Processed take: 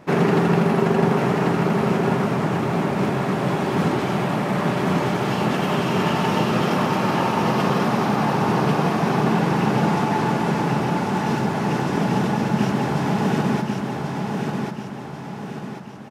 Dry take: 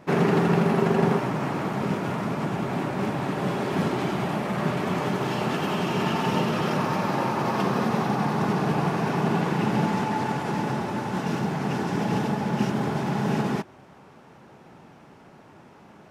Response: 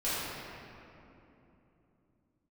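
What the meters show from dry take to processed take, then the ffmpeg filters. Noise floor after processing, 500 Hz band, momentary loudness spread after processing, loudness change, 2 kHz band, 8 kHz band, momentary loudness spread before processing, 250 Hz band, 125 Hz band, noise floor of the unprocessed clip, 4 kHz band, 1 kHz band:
-33 dBFS, +4.5 dB, 7 LU, +4.5 dB, +4.5 dB, +5.0 dB, 6 LU, +5.0 dB, +5.0 dB, -51 dBFS, +4.5 dB, +5.0 dB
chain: -af "aecho=1:1:1089|2178|3267|4356|5445|6534:0.631|0.284|0.128|0.0575|0.0259|0.0116,volume=3dB"

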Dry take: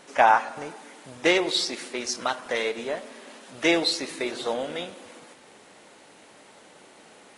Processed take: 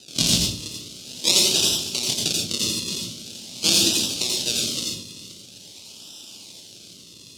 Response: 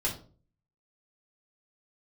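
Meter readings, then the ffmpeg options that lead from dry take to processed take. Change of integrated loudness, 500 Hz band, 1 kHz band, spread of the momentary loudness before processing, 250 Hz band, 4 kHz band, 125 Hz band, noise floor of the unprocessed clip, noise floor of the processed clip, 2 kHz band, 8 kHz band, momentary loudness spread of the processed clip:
+5.0 dB, -8.0 dB, -18.0 dB, 23 LU, +0.5 dB, +10.0 dB, +14.0 dB, -52 dBFS, -46 dBFS, -5.5 dB, +15.5 dB, 22 LU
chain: -filter_complex "[0:a]asplit=2[a][b];[b]acompressor=threshold=-31dB:ratio=6,volume=-1dB[c];[a][c]amix=inputs=2:normalize=0,equalizer=f=440:w=1.5:g=-6.5,acrusher=samples=39:mix=1:aa=0.000001:lfo=1:lforange=39:lforate=0.45,highpass=170,lowpass=4k,equalizer=f=1k:w=0.35:g=-13,asplit=2[d][e];[1:a]atrim=start_sample=2205,highshelf=f=7.6k:g=11,adelay=83[f];[e][f]afir=irnorm=-1:irlink=0,volume=-7.5dB[g];[d][g]amix=inputs=2:normalize=0,aexciter=amount=15.5:drive=6.4:freq=2.9k,volume=-1dB"

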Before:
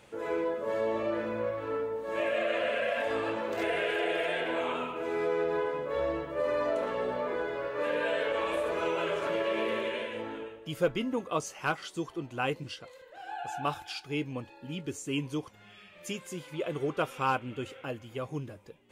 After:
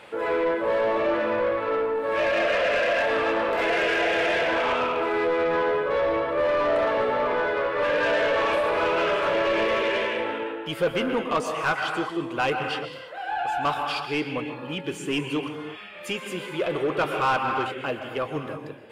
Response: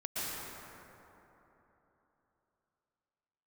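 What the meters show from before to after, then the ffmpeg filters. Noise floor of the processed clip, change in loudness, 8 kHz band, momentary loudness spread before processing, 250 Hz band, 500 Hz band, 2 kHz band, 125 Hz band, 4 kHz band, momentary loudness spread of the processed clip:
-38 dBFS, +8.0 dB, n/a, 10 LU, +5.5 dB, +7.0 dB, +9.5 dB, +2.5 dB, +8.5 dB, 9 LU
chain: -filter_complex "[0:a]equalizer=f=6.3k:t=o:w=0.53:g=-10,asplit=2[a][b];[1:a]atrim=start_sample=2205,afade=t=out:st=0.41:d=0.01,atrim=end_sample=18522[c];[b][c]afir=irnorm=-1:irlink=0,volume=-8.5dB[d];[a][d]amix=inputs=2:normalize=0,asplit=2[e][f];[f]highpass=f=720:p=1,volume=18dB,asoftclip=type=tanh:threshold=-14.5dB[g];[e][g]amix=inputs=2:normalize=0,lowpass=f=3.1k:p=1,volume=-6dB"

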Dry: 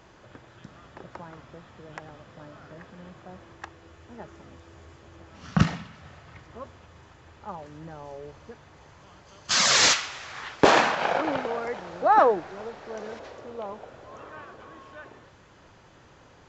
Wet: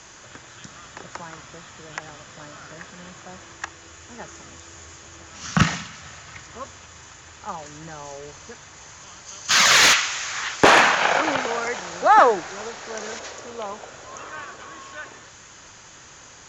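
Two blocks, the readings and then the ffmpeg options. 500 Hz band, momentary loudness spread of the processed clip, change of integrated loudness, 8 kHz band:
+2.0 dB, 24 LU, +5.5 dB, +5.0 dB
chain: -filter_complex "[0:a]acrossover=split=3500[a][b];[b]acompressor=threshold=-49dB:ratio=4:attack=1:release=60[c];[a][c]amix=inputs=2:normalize=0,lowpass=f=6.8k:t=q:w=5.7,acrossover=split=420|1100[d][e][f];[f]aeval=exprs='0.282*sin(PI/2*1.78*val(0)/0.282)':c=same[g];[d][e][g]amix=inputs=3:normalize=0,volume=1.5dB"

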